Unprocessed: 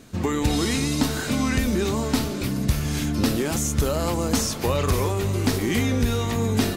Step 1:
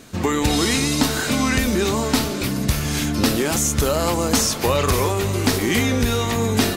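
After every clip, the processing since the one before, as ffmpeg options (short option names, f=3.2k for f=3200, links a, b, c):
-af "lowshelf=f=350:g=-6,volume=6.5dB"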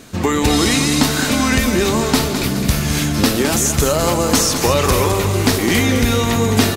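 -af "aecho=1:1:210|420|630|840|1050:0.376|0.165|0.0728|0.032|0.0141,volume=3.5dB"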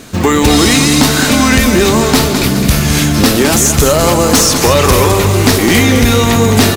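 -af "acrusher=bits=7:mode=log:mix=0:aa=0.000001,volume=10dB,asoftclip=hard,volume=-10dB,volume=7dB"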